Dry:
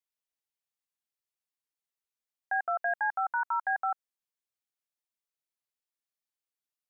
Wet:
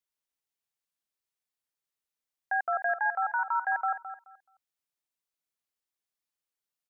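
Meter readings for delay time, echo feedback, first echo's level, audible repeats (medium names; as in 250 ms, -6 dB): 214 ms, 21%, -11.5 dB, 2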